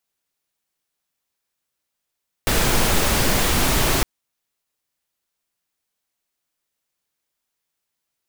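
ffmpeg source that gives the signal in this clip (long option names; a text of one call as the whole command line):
ffmpeg -f lavfi -i "anoisesrc=color=pink:amplitude=0.646:duration=1.56:sample_rate=44100:seed=1" out.wav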